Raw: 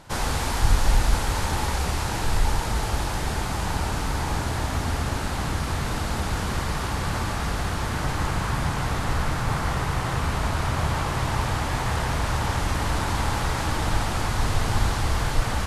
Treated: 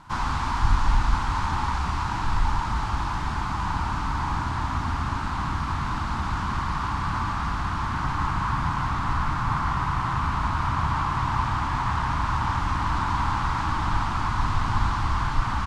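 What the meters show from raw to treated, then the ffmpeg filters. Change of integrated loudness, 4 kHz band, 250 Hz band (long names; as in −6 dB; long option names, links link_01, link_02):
−0.5 dB, −6.0 dB, −2.0 dB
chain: -filter_complex "[0:a]acrossover=split=7800[link_01][link_02];[link_02]acompressor=threshold=-55dB:ratio=4:attack=1:release=60[link_03];[link_01][link_03]amix=inputs=2:normalize=0,firequalizer=gain_entry='entry(290,0);entry(480,-16);entry(1000,9);entry(1800,-2);entry(13000,-13)':delay=0.05:min_phase=1,volume=-1.5dB"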